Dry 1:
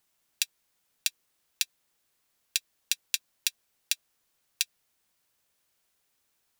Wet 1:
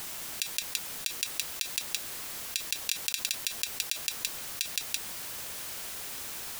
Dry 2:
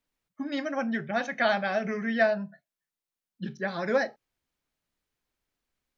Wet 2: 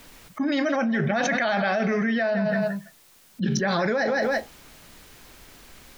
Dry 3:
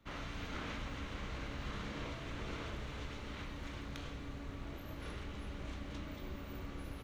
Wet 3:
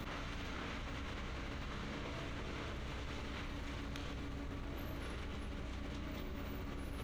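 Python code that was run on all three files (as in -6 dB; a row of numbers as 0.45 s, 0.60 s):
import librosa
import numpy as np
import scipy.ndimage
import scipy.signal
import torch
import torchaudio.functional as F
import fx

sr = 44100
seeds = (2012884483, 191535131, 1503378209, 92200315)

p1 = x + fx.echo_feedback(x, sr, ms=167, feedback_pct=19, wet_db=-17.0, dry=0)
p2 = fx.env_flatten(p1, sr, amount_pct=100)
y = F.gain(torch.from_numpy(p2), -4.5).numpy()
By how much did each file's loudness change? -0.5 LU, +4.5 LU, 0.0 LU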